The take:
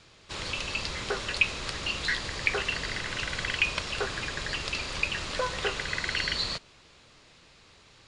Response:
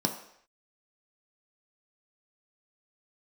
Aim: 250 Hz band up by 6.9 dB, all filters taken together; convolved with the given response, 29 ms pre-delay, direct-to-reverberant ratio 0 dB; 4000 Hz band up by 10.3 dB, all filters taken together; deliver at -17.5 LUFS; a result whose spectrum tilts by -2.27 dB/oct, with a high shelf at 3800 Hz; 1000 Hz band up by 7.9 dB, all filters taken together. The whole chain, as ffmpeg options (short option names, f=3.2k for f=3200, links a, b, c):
-filter_complex "[0:a]equalizer=f=250:t=o:g=9,equalizer=f=1k:t=o:g=8,highshelf=f=3.8k:g=7,equalizer=f=4k:t=o:g=8,asplit=2[a][b];[1:a]atrim=start_sample=2205,adelay=29[c];[b][c]afir=irnorm=-1:irlink=0,volume=-7.5dB[d];[a][d]amix=inputs=2:normalize=0,volume=2dB"